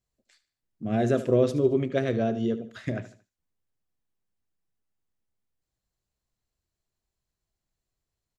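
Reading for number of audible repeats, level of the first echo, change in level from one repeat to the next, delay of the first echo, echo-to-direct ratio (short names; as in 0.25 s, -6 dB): 3, -14.5 dB, -9.0 dB, 75 ms, -14.0 dB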